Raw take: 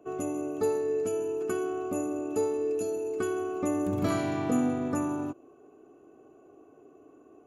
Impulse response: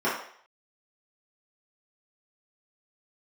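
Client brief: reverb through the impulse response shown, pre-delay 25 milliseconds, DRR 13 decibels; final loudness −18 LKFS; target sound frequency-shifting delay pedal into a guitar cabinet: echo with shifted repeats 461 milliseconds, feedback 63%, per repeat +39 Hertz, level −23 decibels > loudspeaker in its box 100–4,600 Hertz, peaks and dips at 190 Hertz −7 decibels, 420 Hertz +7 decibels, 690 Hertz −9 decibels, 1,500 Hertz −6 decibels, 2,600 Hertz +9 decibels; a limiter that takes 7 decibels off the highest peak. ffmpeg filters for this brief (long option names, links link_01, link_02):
-filter_complex "[0:a]alimiter=limit=-22.5dB:level=0:latency=1,asplit=2[link_01][link_02];[1:a]atrim=start_sample=2205,adelay=25[link_03];[link_02][link_03]afir=irnorm=-1:irlink=0,volume=-27.5dB[link_04];[link_01][link_04]amix=inputs=2:normalize=0,asplit=6[link_05][link_06][link_07][link_08][link_09][link_10];[link_06]adelay=461,afreqshift=39,volume=-23dB[link_11];[link_07]adelay=922,afreqshift=78,volume=-27dB[link_12];[link_08]adelay=1383,afreqshift=117,volume=-31dB[link_13];[link_09]adelay=1844,afreqshift=156,volume=-35dB[link_14];[link_10]adelay=2305,afreqshift=195,volume=-39.1dB[link_15];[link_05][link_11][link_12][link_13][link_14][link_15]amix=inputs=6:normalize=0,highpass=100,equalizer=frequency=190:width_type=q:width=4:gain=-7,equalizer=frequency=420:width_type=q:width=4:gain=7,equalizer=frequency=690:width_type=q:width=4:gain=-9,equalizer=frequency=1500:width_type=q:width=4:gain=-6,equalizer=frequency=2600:width_type=q:width=4:gain=9,lowpass=frequency=4600:width=0.5412,lowpass=frequency=4600:width=1.3066,volume=9.5dB"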